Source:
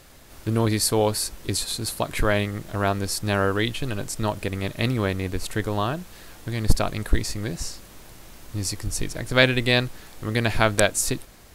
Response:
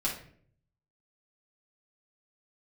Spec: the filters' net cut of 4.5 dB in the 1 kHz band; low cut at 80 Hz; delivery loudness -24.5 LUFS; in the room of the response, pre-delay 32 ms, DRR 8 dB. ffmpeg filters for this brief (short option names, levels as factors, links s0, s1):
-filter_complex "[0:a]highpass=80,equalizer=f=1000:t=o:g=-6.5,asplit=2[s0][s1];[1:a]atrim=start_sample=2205,adelay=32[s2];[s1][s2]afir=irnorm=-1:irlink=0,volume=0.2[s3];[s0][s3]amix=inputs=2:normalize=0,volume=1.12"